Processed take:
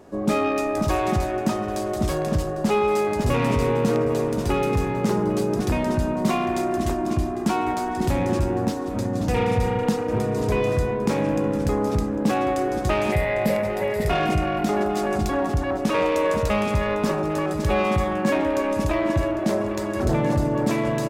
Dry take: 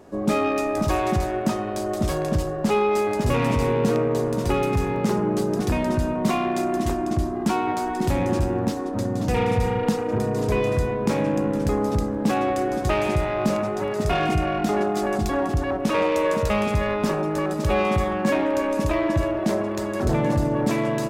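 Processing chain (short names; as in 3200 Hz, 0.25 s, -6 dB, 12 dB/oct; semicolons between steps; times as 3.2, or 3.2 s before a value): 13.12–14.08 thirty-one-band EQ 315 Hz -12 dB, 500 Hz +11 dB, 1250 Hz -10 dB, 2000 Hz +11 dB, 6300 Hz -8 dB, 12500 Hz +11 dB; on a send: echo 0.801 s -15.5 dB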